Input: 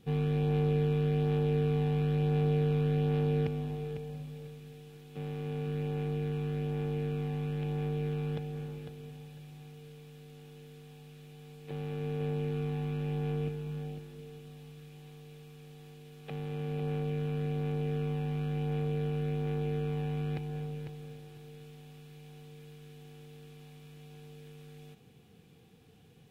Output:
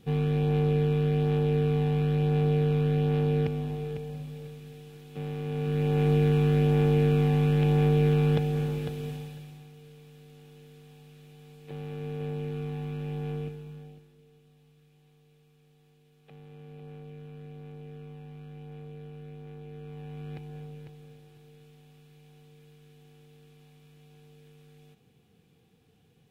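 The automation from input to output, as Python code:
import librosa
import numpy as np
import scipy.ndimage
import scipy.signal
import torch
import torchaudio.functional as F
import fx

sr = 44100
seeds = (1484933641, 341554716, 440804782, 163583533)

y = fx.gain(x, sr, db=fx.line((5.47, 3.5), (6.11, 11.0), (9.1, 11.0), (9.69, -0.5), (13.36, -0.5), (14.17, -11.5), (19.67, -11.5), (20.39, -4.5)))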